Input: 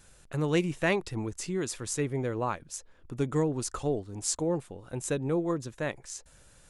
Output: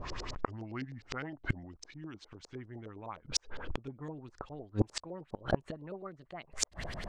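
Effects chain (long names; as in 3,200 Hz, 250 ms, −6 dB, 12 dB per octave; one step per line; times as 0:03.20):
gliding playback speed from 69% → 120%
dynamic equaliser 460 Hz, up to −7 dB, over −44 dBFS, Q 2.8
auto-filter low-pass saw up 9.8 Hz 420–5,200 Hz
gate with flip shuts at −31 dBFS, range −32 dB
level +17 dB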